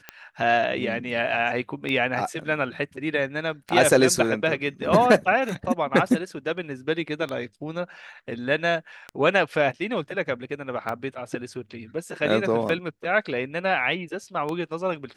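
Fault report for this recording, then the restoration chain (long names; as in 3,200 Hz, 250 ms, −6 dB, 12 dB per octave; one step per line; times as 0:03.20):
scratch tick 33 1/3 rpm −17 dBFS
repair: click removal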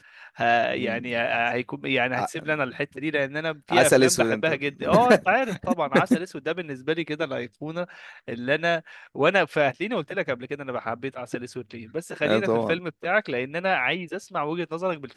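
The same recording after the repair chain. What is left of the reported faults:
none of them is left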